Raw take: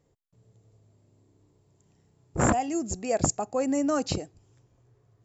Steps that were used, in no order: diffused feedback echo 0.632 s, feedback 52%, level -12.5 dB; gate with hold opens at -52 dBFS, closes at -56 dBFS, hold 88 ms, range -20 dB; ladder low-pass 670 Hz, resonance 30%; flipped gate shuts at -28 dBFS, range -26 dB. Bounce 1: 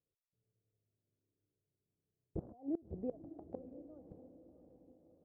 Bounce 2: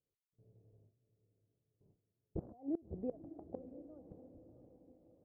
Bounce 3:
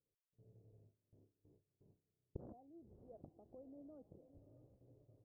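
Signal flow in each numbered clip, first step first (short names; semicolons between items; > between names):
ladder low-pass > flipped gate > gate with hold > diffused feedback echo; gate with hold > ladder low-pass > flipped gate > diffused feedback echo; flipped gate > diffused feedback echo > gate with hold > ladder low-pass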